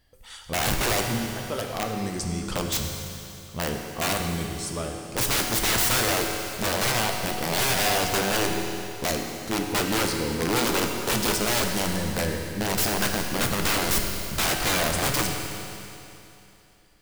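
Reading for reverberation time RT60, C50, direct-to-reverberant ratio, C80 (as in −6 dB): 2.9 s, 3.5 dB, 2.0 dB, 4.5 dB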